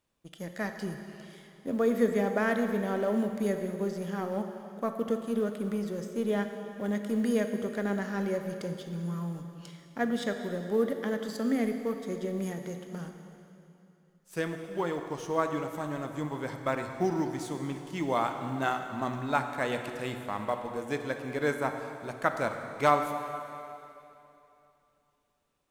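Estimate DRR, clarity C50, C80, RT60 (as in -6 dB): 6.0 dB, 6.5 dB, 7.0 dB, 2.9 s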